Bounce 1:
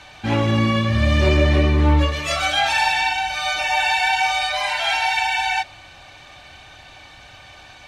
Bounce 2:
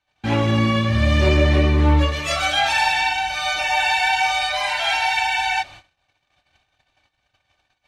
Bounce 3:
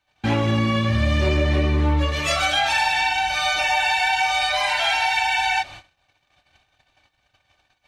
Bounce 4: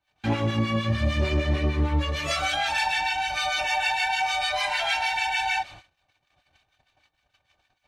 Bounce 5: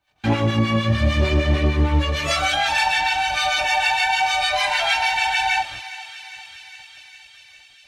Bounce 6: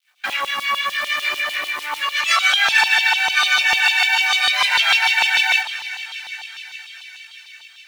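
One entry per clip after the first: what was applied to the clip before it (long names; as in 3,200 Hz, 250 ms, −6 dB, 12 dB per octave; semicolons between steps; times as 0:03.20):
noise gate −39 dBFS, range −34 dB
downward compressor 3 to 1, threshold −21 dBFS, peak gain reduction 7.5 dB; level +3 dB
two-band tremolo in antiphase 6.6 Hz, depth 70%, crossover 1,100 Hz; level −1.5 dB
feedback echo with a high-pass in the loop 405 ms, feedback 76%, high-pass 1,100 Hz, level −14 dB; level +5.5 dB
log-companded quantiser 6 bits; auto-filter high-pass saw down 6.7 Hz 960–3,600 Hz; level +2 dB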